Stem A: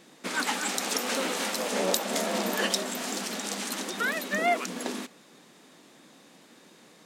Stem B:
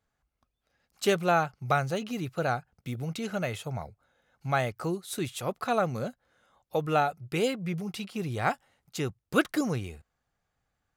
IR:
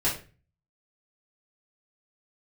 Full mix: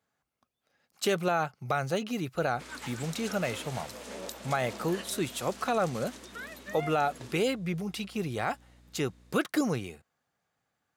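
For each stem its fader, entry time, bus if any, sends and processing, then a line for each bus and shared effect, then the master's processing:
-13.5 dB, 2.35 s, no send, band-stop 770 Hz, Q 12; hum 60 Hz, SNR 13 dB
+1.5 dB, 0.00 s, no send, high-pass 150 Hz 12 dB/octave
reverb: none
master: peak limiter -17 dBFS, peak gain reduction 7.5 dB

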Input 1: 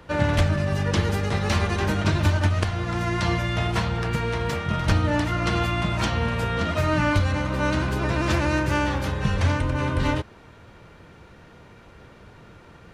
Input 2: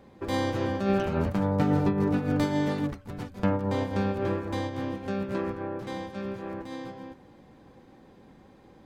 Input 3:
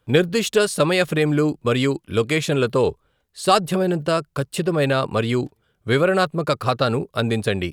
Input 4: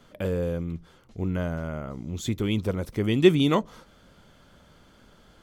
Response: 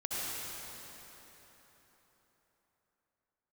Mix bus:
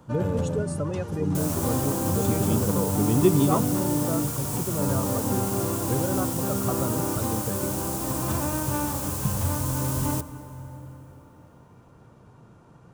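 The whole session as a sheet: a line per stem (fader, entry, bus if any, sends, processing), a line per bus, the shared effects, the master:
-7.5 dB, 0.00 s, send -15 dB, auto duck -9 dB, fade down 0.40 s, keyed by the third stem
+2.0 dB, 1.35 s, send -22.5 dB, hum notches 50/100/150/200 Hz; peak limiter -24.5 dBFS, peak gain reduction 11 dB; word length cut 6-bit, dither triangular
-12.5 dB, 0.00 s, no send, spectral gate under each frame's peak -15 dB strong
-3.5 dB, 0.00 s, no send, none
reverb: on, RT60 4.2 s, pre-delay 58 ms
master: graphic EQ 125/250/1000/2000/4000/8000 Hz +11/+5/+5/-11/-7/+4 dB; bass shelf 330 Hz -6 dB

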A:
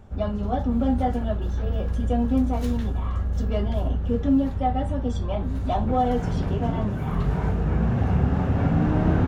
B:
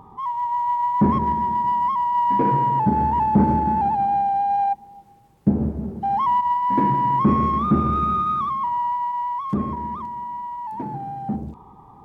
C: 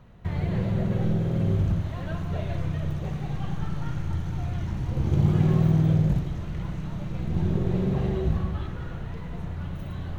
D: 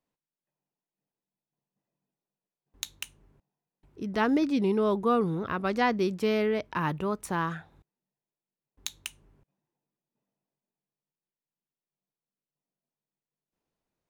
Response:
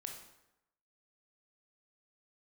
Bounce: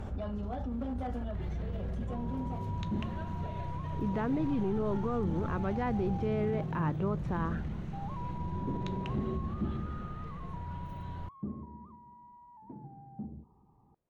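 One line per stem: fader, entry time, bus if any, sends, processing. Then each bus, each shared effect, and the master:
-12.0 dB, 0.00 s, bus B, no send, one-sided clip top -18.5 dBFS, bottom -13.5 dBFS; level flattener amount 70%; auto duck -18 dB, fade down 0.25 s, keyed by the fourth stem
-18.5 dB, 1.90 s, bus A, no send, tilt shelf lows +5.5 dB, about 670 Hz
-8.0 dB, 1.10 s, bus B, no send, peak limiter -20.5 dBFS, peak gain reduction 11 dB
+3.0 dB, 0.00 s, bus A, no send, none
bus A: 0.0 dB, tape spacing loss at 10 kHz 43 dB; peak limiter -26 dBFS, peak gain reduction 11.5 dB
bus B: 0.0 dB, treble shelf 5.7 kHz -5.5 dB; peak limiter -29 dBFS, peak gain reduction 7.5 dB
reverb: none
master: none

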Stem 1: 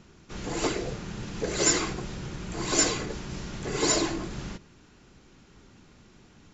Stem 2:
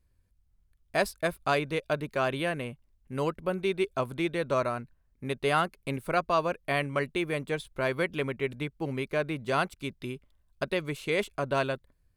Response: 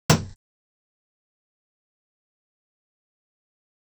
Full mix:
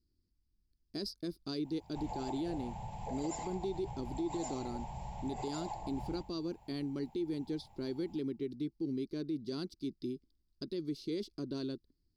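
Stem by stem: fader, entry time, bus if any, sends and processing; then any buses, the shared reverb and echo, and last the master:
-4.0 dB, 1.65 s, no send, echo send -15.5 dB, FFT filter 120 Hz 0 dB, 340 Hz -22 dB, 860 Hz +15 dB, 1.3 kHz -22 dB, 2.2 kHz -9 dB, 6.4 kHz -17 dB, 9.2 kHz +13 dB; compression 6:1, threshold -34 dBFS, peak gain reduction 13.5 dB
-10.0 dB, 0.00 s, no send, no echo send, FFT filter 130 Hz 0 dB, 330 Hz +14 dB, 600 Hz -14 dB, 2.6 kHz -14 dB, 4.9 kHz +15 dB, 7.4 kHz -8 dB, 11 kHz -6 dB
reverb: none
echo: feedback delay 86 ms, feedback 55%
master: peak limiter -29 dBFS, peak gain reduction 10 dB

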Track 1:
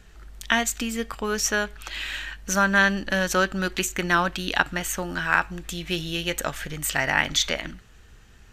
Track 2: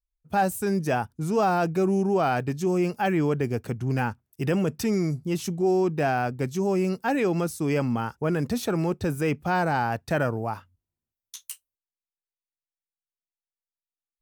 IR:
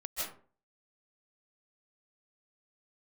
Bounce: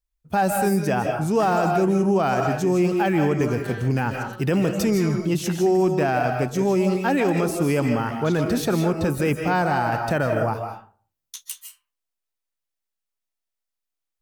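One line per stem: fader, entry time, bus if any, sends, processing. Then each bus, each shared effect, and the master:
-20.0 dB, 0.90 s, no send, echo send -5 dB, none
+1.0 dB, 0.00 s, send -3.5 dB, no echo send, none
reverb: on, RT60 0.45 s, pre-delay 115 ms
echo: delay 89 ms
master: peak limiter -12 dBFS, peak gain reduction 5.5 dB

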